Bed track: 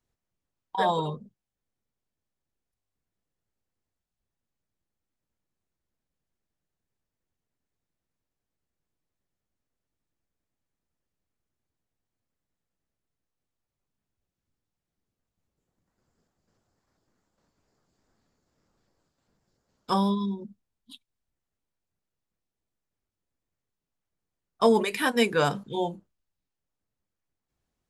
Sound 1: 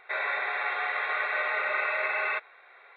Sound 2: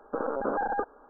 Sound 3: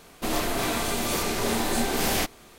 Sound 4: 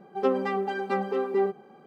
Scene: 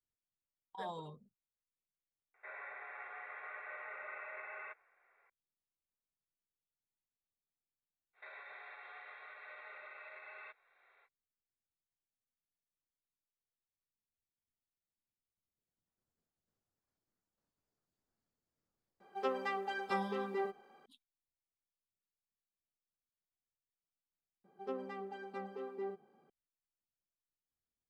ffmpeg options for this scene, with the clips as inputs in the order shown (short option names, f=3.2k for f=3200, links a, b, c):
-filter_complex "[1:a]asplit=2[a][b];[4:a]asplit=2[c][d];[0:a]volume=-18.5dB[e];[a]lowpass=f=2.4k:w=0.5412,lowpass=f=2.4k:w=1.3066[f];[b]alimiter=level_in=3.5dB:limit=-24dB:level=0:latency=1:release=353,volume=-3.5dB[g];[c]highpass=f=1.2k:p=1[h];[e]asplit=2[i][j];[i]atrim=end=24.444[k];[d]atrim=end=1.86,asetpts=PTS-STARTPTS,volume=-17dB[l];[j]atrim=start=26.296[m];[f]atrim=end=2.96,asetpts=PTS-STARTPTS,volume=-18dB,afade=t=in:d=0.004:c=hsin,afade=t=out:st=2.956:d=0.004:c=hsin,adelay=2340[n];[g]atrim=end=2.96,asetpts=PTS-STARTPTS,volume=-15.5dB,afade=t=in:d=0.05,afade=t=out:st=2.91:d=0.05,adelay=8130[o];[h]atrim=end=1.86,asetpts=PTS-STARTPTS,volume=-3.5dB,afade=t=in:d=0.004:c=hsin,afade=t=out:st=1.856:d=0.004:c=hsin,adelay=19000[p];[k][l]acrossfade=d=0.004:c1=hsin:c2=hsin[q];[q][m]acrossfade=d=0.004:c1=hsin:c2=hsin[r];[r][n][o][p]amix=inputs=4:normalize=0"